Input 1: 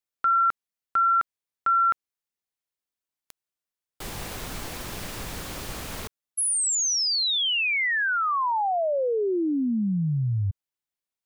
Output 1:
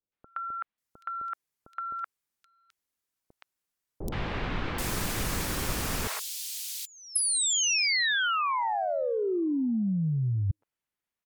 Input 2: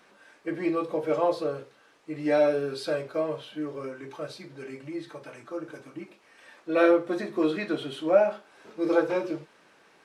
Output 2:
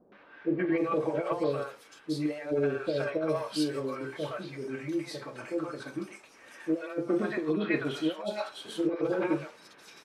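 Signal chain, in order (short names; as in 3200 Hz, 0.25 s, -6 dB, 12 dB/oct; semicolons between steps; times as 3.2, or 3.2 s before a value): negative-ratio compressor -27 dBFS, ratio -0.5; three bands offset in time lows, mids, highs 0.12/0.78 s, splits 630/3400 Hz; gain +1.5 dB; MP3 112 kbps 48000 Hz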